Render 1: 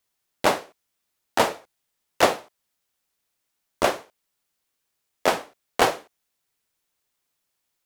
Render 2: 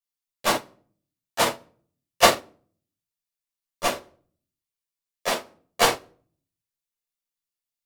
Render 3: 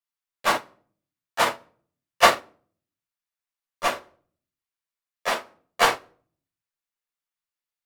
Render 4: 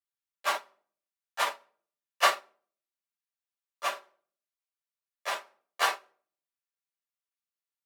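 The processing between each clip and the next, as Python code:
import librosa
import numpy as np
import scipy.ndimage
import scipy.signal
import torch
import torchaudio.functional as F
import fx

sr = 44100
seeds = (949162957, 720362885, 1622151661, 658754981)

y1 = fx.high_shelf(x, sr, hz=2400.0, db=9.5)
y1 = fx.room_shoebox(y1, sr, seeds[0], volume_m3=550.0, walls='furnished', distance_m=5.8)
y1 = fx.upward_expand(y1, sr, threshold_db=-20.0, expansion=2.5)
y1 = y1 * 10.0 ** (-5.0 / 20.0)
y2 = fx.peak_eq(y1, sr, hz=1400.0, db=9.0, octaves=2.3)
y2 = y2 * 10.0 ** (-5.5 / 20.0)
y3 = scipy.signal.sosfilt(scipy.signal.butter(2, 590.0, 'highpass', fs=sr, output='sos'), y2)
y3 = y3 + 0.51 * np.pad(y3, (int(5.1 * sr / 1000.0), 0))[:len(y3)]
y3 = y3 * 10.0 ** (-7.5 / 20.0)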